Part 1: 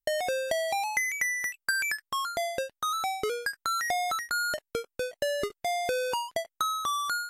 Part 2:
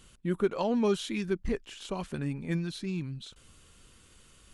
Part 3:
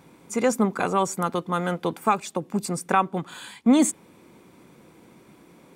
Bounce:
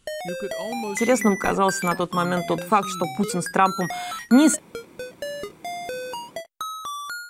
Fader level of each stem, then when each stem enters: -2.5, -5.0, +2.5 dB; 0.00, 0.00, 0.65 s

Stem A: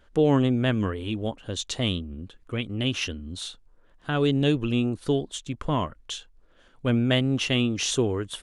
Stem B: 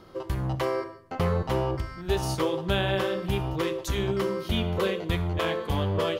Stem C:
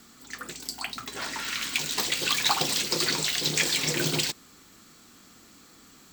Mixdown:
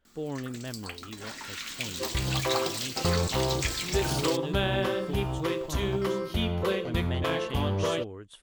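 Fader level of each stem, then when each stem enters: -14.5, -1.5, -7.0 dB; 0.00, 1.85, 0.05 s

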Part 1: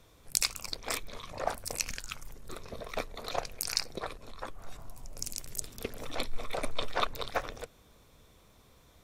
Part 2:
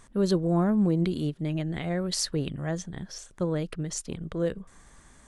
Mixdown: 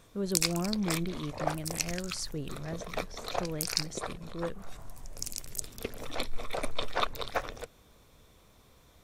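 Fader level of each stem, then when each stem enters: +0.5, -8.5 dB; 0.00, 0.00 s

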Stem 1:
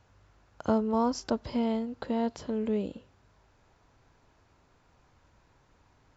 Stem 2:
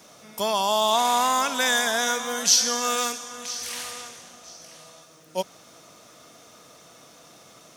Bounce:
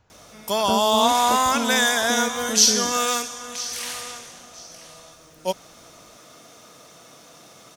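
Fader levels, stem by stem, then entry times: +1.0, +2.5 dB; 0.00, 0.10 s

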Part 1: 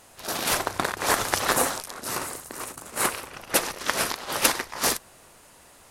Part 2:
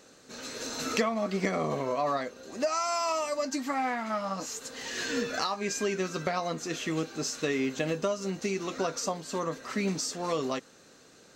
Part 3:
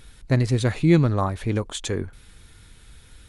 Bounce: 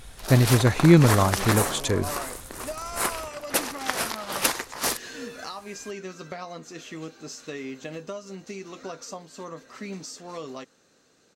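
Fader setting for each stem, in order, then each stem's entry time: -2.5, -6.5, +2.0 dB; 0.00, 0.05, 0.00 s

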